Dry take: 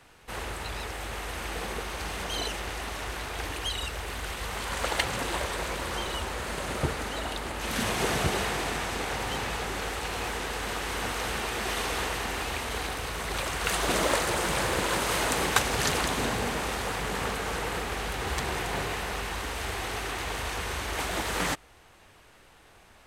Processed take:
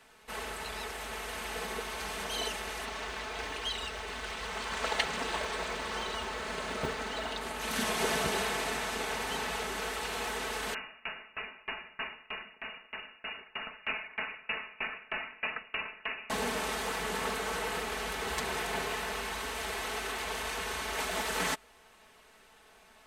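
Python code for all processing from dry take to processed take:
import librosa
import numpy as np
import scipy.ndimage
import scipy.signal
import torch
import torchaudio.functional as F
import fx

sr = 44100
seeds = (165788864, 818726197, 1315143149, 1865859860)

y = fx.chain(x, sr, fx.lowpass(hz=6700.0, slope=12),
    fx.quant_float(bits=4), at=(2.85, 7.41))
y = fx.chain(y, sr, fx.freq_invert(carrier_hz=2800),
    fx.tremolo_decay(direction='decaying', hz=3.2, depth_db=29), at=(10.74, 16.3))
y = fx.low_shelf(y, sr, hz=180.0, db=-9.0)
y = y + 0.65 * np.pad(y, (int(4.6 * sr / 1000.0), 0))[:len(y)]
y = y * 10.0 ** (-3.5 / 20.0)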